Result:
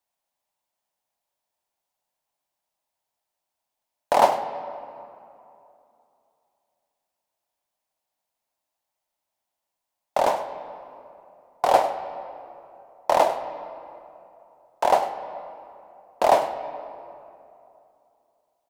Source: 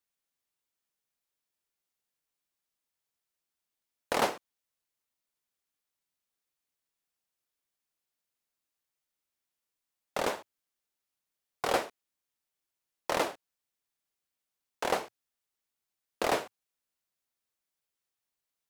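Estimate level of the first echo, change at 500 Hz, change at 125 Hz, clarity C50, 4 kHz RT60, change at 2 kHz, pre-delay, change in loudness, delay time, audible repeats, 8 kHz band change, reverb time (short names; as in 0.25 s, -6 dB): -14.5 dB, +11.0 dB, +3.0 dB, 9.0 dB, 1.6 s, +2.5 dB, 26 ms, +9.0 dB, 0.1 s, 1, +2.0 dB, 2.8 s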